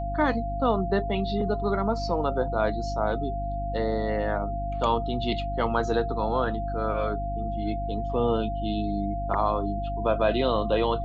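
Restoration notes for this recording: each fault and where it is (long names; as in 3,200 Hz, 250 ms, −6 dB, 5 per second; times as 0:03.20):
mains hum 50 Hz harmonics 6 −32 dBFS
whistle 690 Hz −31 dBFS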